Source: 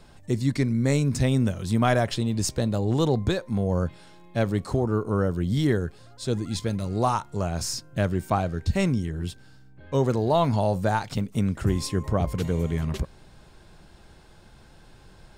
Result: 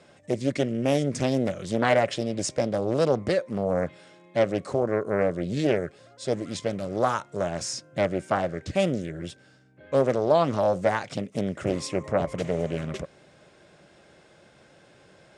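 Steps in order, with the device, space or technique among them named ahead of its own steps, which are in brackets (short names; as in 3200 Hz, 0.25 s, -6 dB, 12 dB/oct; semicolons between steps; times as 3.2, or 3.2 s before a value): full-range speaker at full volume (Doppler distortion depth 0.77 ms; speaker cabinet 170–9000 Hz, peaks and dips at 220 Hz -3 dB, 570 Hz +8 dB, 910 Hz -6 dB, 2100 Hz +4 dB, 4300 Hz -5 dB)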